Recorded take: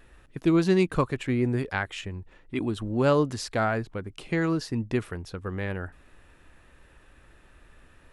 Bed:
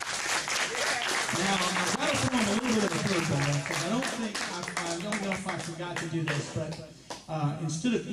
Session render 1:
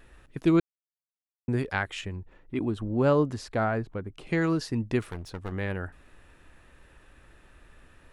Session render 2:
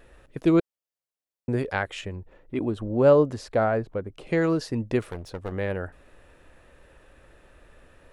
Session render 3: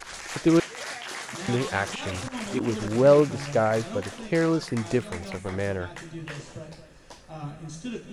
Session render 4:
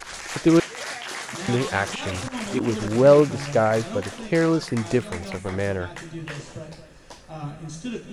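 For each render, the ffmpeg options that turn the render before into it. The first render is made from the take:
ffmpeg -i in.wav -filter_complex "[0:a]asettb=1/sr,asplit=3[link_01][link_02][link_03];[link_01]atrim=end=2.164[link_04];[link_02]atrim=start=2.16:end=4.27,asetpts=PTS-STARTPTS,afade=type=in:duration=0.004:curve=qsin,afade=type=out:start_time=2.106:duration=0.004:curve=qsin,highshelf=frequency=2100:gain=-9.5[link_05];[link_03]atrim=start=4.266[link_06];[link_04][link_05]acrossfade=duration=0.004:curve1=hsin:curve2=qsin[link_07];[link_07][link_06]acrossfade=duration=0.004:curve1=qsin:curve2=hsin,asettb=1/sr,asplit=3[link_08][link_09][link_10];[link_08]atrim=end=5.014[link_11];[link_09]atrim=start=5.01:end=5.52,asetpts=PTS-STARTPTS,afade=type=in:duration=0.004:curve=qsin,afade=type=out:start_time=0.506:duration=0.004:curve=qsin,aeval=exprs='clip(val(0),-1,0.00841)':channel_layout=same[link_12];[link_10]atrim=start=5.516[link_13];[link_11][link_12]acrossfade=duration=0.004:curve1=hsin:curve2=qsin[link_14];[link_14][link_13]acrossfade=duration=0.004:curve1=qsin:curve2=hsin,asplit=3[link_15][link_16][link_17];[link_15]atrim=end=0.6,asetpts=PTS-STARTPTS,afade=type=out:start_time=0.596:duration=0.004:curve=hsin[link_18];[link_16]atrim=start=0.6:end=1.48,asetpts=PTS-STARTPTS,volume=0[link_19];[link_17]atrim=start=1.48,asetpts=PTS-STARTPTS,afade=type=in:duration=0.004:curve=hsin[link_20];[link_18][link_19][link_20]concat=n=3:v=0:a=1" out.wav
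ffmpeg -i in.wav -af "equalizer=frequency=540:width=1.8:gain=8.5" out.wav
ffmpeg -i in.wav -i bed.wav -filter_complex "[1:a]volume=-7dB[link_01];[0:a][link_01]amix=inputs=2:normalize=0" out.wav
ffmpeg -i in.wav -af "volume=3dB" out.wav

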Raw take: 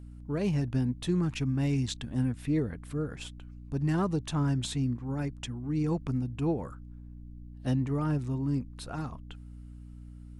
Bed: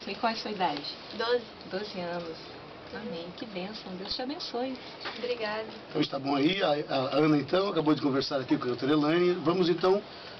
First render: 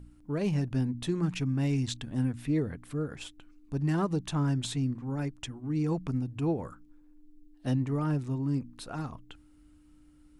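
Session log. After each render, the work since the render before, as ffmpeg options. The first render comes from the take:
ffmpeg -i in.wav -af "bandreject=frequency=60:width_type=h:width=4,bandreject=frequency=120:width_type=h:width=4,bandreject=frequency=180:width_type=h:width=4,bandreject=frequency=240:width_type=h:width=4" out.wav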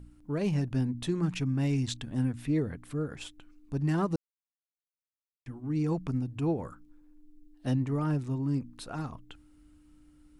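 ffmpeg -i in.wav -filter_complex "[0:a]asplit=3[link_01][link_02][link_03];[link_01]atrim=end=4.16,asetpts=PTS-STARTPTS,afade=type=out:start_time=4.156:duration=0.004:curve=hsin[link_04];[link_02]atrim=start=4.16:end=5.46,asetpts=PTS-STARTPTS,volume=0[link_05];[link_03]atrim=start=5.46,asetpts=PTS-STARTPTS,afade=type=in:duration=0.004:curve=hsin[link_06];[link_04][link_05][link_06]concat=n=3:v=0:a=1" out.wav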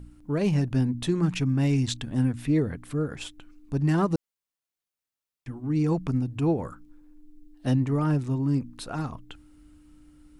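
ffmpeg -i in.wav -af "volume=5dB" out.wav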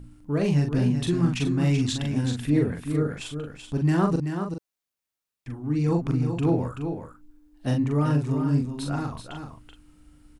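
ffmpeg -i in.wav -filter_complex "[0:a]asplit=2[link_01][link_02];[link_02]adelay=41,volume=-4dB[link_03];[link_01][link_03]amix=inputs=2:normalize=0,asplit=2[link_04][link_05];[link_05]aecho=0:1:382:0.422[link_06];[link_04][link_06]amix=inputs=2:normalize=0" out.wav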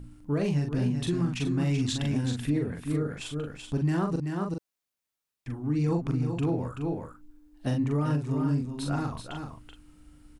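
ffmpeg -i in.wav -af "alimiter=limit=-18.5dB:level=0:latency=1:release=407" out.wav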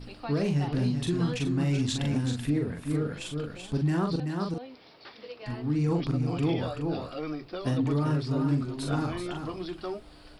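ffmpeg -i in.wav -i bed.wav -filter_complex "[1:a]volume=-11dB[link_01];[0:a][link_01]amix=inputs=2:normalize=0" out.wav

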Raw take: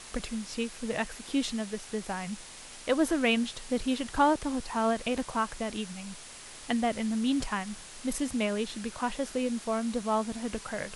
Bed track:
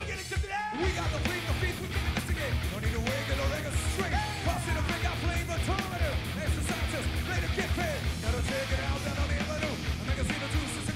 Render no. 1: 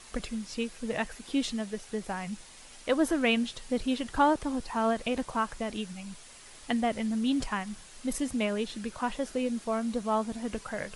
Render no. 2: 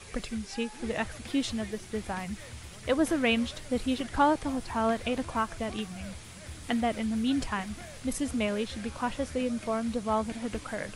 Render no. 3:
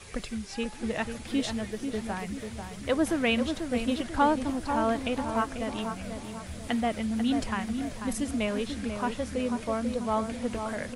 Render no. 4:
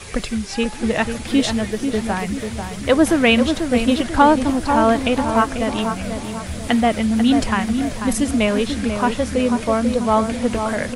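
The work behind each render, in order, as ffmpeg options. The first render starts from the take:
ffmpeg -i in.wav -af "afftdn=noise_reduction=6:noise_floor=-47" out.wav
ffmpeg -i in.wav -i bed.wav -filter_complex "[1:a]volume=-14.5dB[link_01];[0:a][link_01]amix=inputs=2:normalize=0" out.wav
ffmpeg -i in.wav -filter_complex "[0:a]asplit=2[link_01][link_02];[link_02]adelay=491,lowpass=frequency=1400:poles=1,volume=-6dB,asplit=2[link_03][link_04];[link_04]adelay=491,lowpass=frequency=1400:poles=1,volume=0.48,asplit=2[link_05][link_06];[link_06]adelay=491,lowpass=frequency=1400:poles=1,volume=0.48,asplit=2[link_07][link_08];[link_08]adelay=491,lowpass=frequency=1400:poles=1,volume=0.48,asplit=2[link_09][link_10];[link_10]adelay=491,lowpass=frequency=1400:poles=1,volume=0.48,asplit=2[link_11][link_12];[link_12]adelay=491,lowpass=frequency=1400:poles=1,volume=0.48[link_13];[link_01][link_03][link_05][link_07][link_09][link_11][link_13]amix=inputs=7:normalize=0" out.wav
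ffmpeg -i in.wav -af "volume=11.5dB,alimiter=limit=-2dB:level=0:latency=1" out.wav

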